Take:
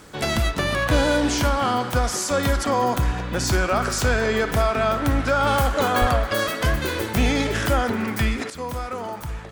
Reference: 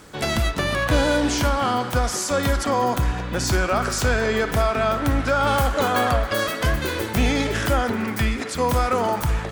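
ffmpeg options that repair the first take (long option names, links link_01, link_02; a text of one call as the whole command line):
ffmpeg -i in.wav -filter_complex "[0:a]asplit=3[link_01][link_02][link_03];[link_01]afade=type=out:start_time=6:duration=0.02[link_04];[link_02]highpass=frequency=140:width=0.5412,highpass=frequency=140:width=1.3066,afade=type=in:start_time=6:duration=0.02,afade=type=out:start_time=6.12:duration=0.02[link_05];[link_03]afade=type=in:start_time=6.12:duration=0.02[link_06];[link_04][link_05][link_06]amix=inputs=3:normalize=0,asetnsamples=nb_out_samples=441:pad=0,asendcmd='8.5 volume volume 9dB',volume=0dB" out.wav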